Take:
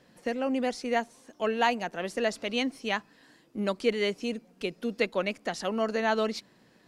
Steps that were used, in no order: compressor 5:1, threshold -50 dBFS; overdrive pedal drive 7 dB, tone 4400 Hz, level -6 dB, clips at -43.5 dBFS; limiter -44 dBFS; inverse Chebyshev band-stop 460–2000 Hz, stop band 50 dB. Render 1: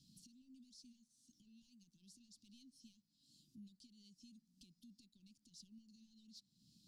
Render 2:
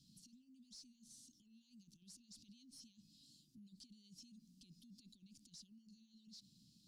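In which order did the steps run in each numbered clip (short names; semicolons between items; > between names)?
compressor > overdrive pedal > limiter > inverse Chebyshev band-stop; limiter > compressor > inverse Chebyshev band-stop > overdrive pedal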